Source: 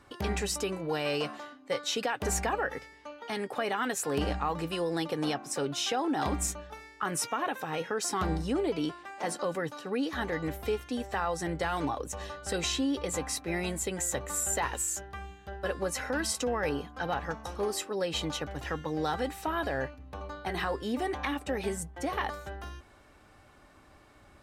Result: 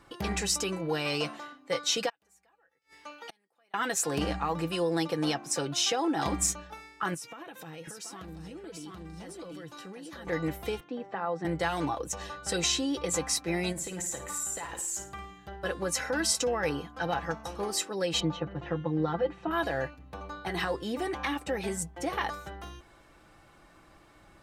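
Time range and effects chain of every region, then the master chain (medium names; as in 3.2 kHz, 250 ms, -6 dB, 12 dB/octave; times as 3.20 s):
2.09–3.74 s: tilt EQ +2 dB/octave + inverted gate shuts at -33 dBFS, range -38 dB
7.14–10.27 s: peaking EQ 950 Hz -6.5 dB 2.5 oct + delay 731 ms -4.5 dB + compression 12:1, threshold -40 dBFS
10.80–11.45 s: high-pass 150 Hz 24 dB/octave + tape spacing loss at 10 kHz 34 dB
13.72–15.48 s: compression 12:1, threshold -35 dBFS + flutter echo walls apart 9.3 m, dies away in 0.41 s
18.20–19.51 s: tape spacing loss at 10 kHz 37 dB + comb 5.7 ms, depth 92%
whole clip: dynamic bell 5.9 kHz, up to +6 dB, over -46 dBFS, Q 0.97; comb 6 ms, depth 42%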